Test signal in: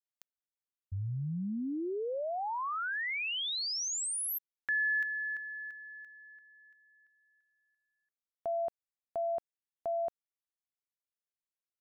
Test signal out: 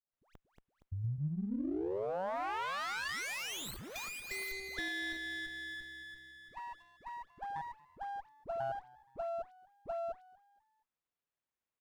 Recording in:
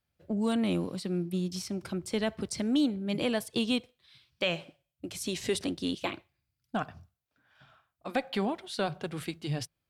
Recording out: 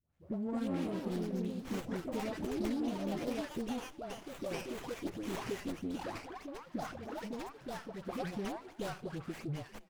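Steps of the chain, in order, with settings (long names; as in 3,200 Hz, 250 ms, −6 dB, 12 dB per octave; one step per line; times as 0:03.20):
downward compressor 3 to 1, threshold −40 dBFS
delay with pitch and tempo change per echo 265 ms, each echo +3 semitones, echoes 2
all-pass dispersion highs, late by 137 ms, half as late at 1,100 Hz
on a send: echo with shifted repeats 235 ms, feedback 37%, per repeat +66 Hz, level −22.5 dB
on the sum: windowed peak hold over 9 samples
level +1.5 dB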